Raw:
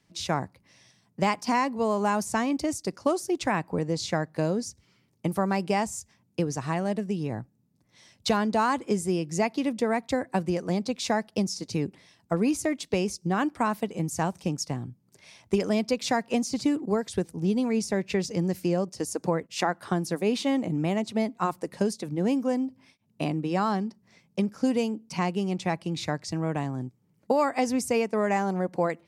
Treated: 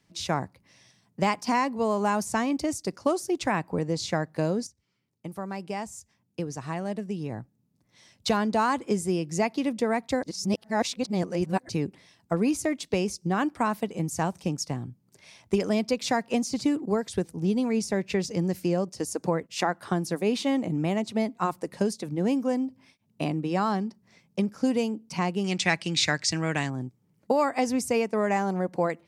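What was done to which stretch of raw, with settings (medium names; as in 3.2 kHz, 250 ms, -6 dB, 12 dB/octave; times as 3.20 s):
4.67–8.49 s: fade in, from -14.5 dB
10.23–11.69 s: reverse
25.44–26.70 s: high-order bell 3.6 kHz +12 dB 2.9 oct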